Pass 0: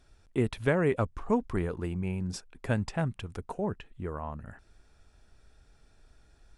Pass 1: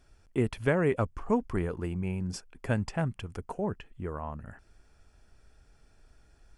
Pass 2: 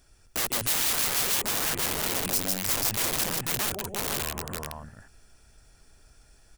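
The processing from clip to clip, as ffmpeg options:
ffmpeg -i in.wav -af "bandreject=frequency=3800:width=6.2" out.wav
ffmpeg -i in.wav -af "aecho=1:1:146|154|300|348|491:0.299|0.376|0.237|0.447|0.596,aeval=exprs='(mod(26.6*val(0)+1,2)-1)/26.6':channel_layout=same,crystalizer=i=2.5:c=0" out.wav

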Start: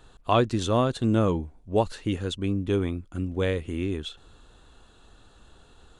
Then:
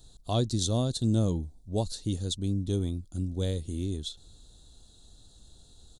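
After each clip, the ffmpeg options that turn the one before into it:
ffmpeg -i in.wav -af "firequalizer=gain_entry='entry(110,0);entry(420,-9);entry(690,-8);entry(1100,-18);entry(2600,-18);entry(3800,5);entry(9200,7)':delay=0.05:min_phase=1" out.wav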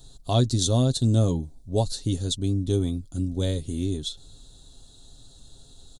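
ffmpeg -i in.wav -af "aecho=1:1:7.4:0.44,volume=4.5dB" out.wav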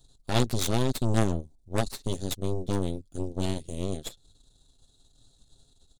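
ffmpeg -i in.wav -af "aeval=exprs='0.355*(cos(1*acos(clip(val(0)/0.355,-1,1)))-cos(1*PI/2))+0.0891*(cos(3*acos(clip(val(0)/0.355,-1,1)))-cos(3*PI/2))+0.0398*(cos(8*acos(clip(val(0)/0.355,-1,1)))-cos(8*PI/2))':channel_layout=same" out.wav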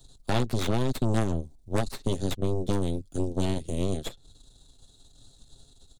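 ffmpeg -i in.wav -filter_complex "[0:a]acrossover=split=120|3000[link_01][link_02][link_03];[link_01]acompressor=threshold=-32dB:ratio=4[link_04];[link_02]acompressor=threshold=-31dB:ratio=4[link_05];[link_03]acompressor=threshold=-49dB:ratio=4[link_06];[link_04][link_05][link_06]amix=inputs=3:normalize=0,volume=6dB" out.wav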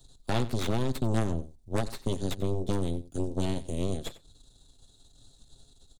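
ffmpeg -i in.wav -af "aecho=1:1:92:0.141,volume=-2.5dB" out.wav

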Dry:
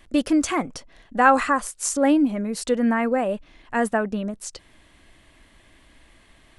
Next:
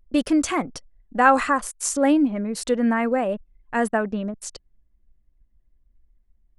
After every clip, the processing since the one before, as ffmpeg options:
ffmpeg -i in.wav -af "anlmdn=1" out.wav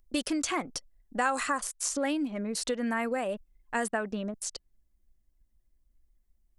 ffmpeg -i in.wav -filter_complex "[0:a]bass=frequency=250:gain=-4,treble=frequency=4000:gain=10,acrossover=split=1500|5000[link_01][link_02][link_03];[link_01]acompressor=threshold=-25dB:ratio=4[link_04];[link_02]acompressor=threshold=-29dB:ratio=4[link_05];[link_03]acompressor=threshold=-35dB:ratio=4[link_06];[link_04][link_05][link_06]amix=inputs=3:normalize=0,volume=-3.5dB" out.wav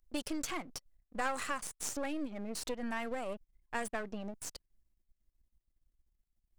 ffmpeg -i in.wav -af "aeval=exprs='if(lt(val(0),0),0.251*val(0),val(0))':channel_layout=same,volume=-4dB" out.wav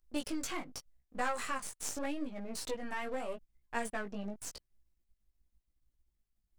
ffmpeg -i in.wav -af "flanger=delay=16:depth=4:speed=0.84,volume=2.5dB" out.wav

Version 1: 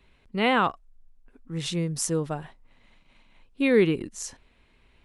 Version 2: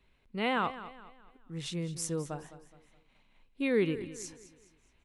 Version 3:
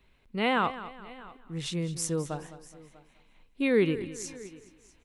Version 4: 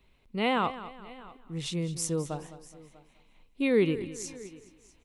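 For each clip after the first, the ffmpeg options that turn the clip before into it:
ffmpeg -i in.wav -af "aecho=1:1:210|420|630|840:0.188|0.0735|0.0287|0.0112,volume=-8dB" out.wav
ffmpeg -i in.wav -af "aecho=1:1:646:0.0841,volume=4dB" out.wav
ffmpeg -i in.wav -af "equalizer=frequency=1600:width=2.9:gain=-6" out.wav

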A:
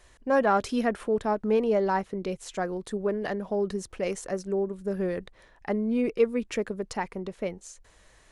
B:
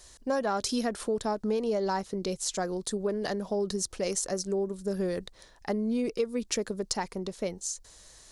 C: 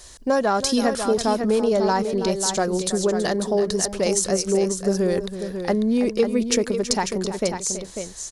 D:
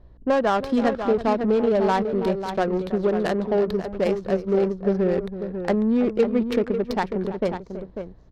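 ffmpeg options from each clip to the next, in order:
ffmpeg -i in.wav -af "highshelf=frequency=3400:width_type=q:width=1.5:gain=10,acompressor=threshold=-25dB:ratio=6" out.wav
ffmpeg -i in.wav -af "aecho=1:1:327|545:0.237|0.398,volume=8.5dB" out.wav
ffmpeg -i in.wav -af "highshelf=frequency=6000:width_type=q:width=1.5:gain=-12.5,aeval=exprs='val(0)+0.002*(sin(2*PI*60*n/s)+sin(2*PI*2*60*n/s)/2+sin(2*PI*3*60*n/s)/3+sin(2*PI*4*60*n/s)/4+sin(2*PI*5*60*n/s)/5)':channel_layout=same,adynamicsmooth=sensitivity=1:basefreq=560" out.wav

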